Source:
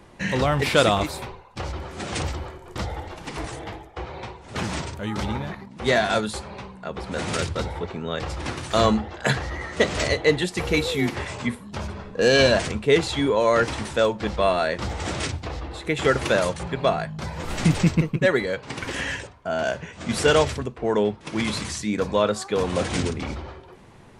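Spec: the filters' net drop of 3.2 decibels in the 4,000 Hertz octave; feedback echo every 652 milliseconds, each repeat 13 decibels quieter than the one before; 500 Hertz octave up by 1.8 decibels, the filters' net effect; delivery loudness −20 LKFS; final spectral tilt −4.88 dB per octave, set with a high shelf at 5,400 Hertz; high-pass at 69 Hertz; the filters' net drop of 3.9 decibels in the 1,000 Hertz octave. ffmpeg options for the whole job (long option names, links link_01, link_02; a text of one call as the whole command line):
ffmpeg -i in.wav -af "highpass=69,equalizer=frequency=500:width_type=o:gain=4,equalizer=frequency=1000:width_type=o:gain=-7.5,equalizer=frequency=4000:width_type=o:gain=-6,highshelf=frequency=5400:gain=6.5,aecho=1:1:652|1304|1956:0.224|0.0493|0.0108,volume=3.5dB" out.wav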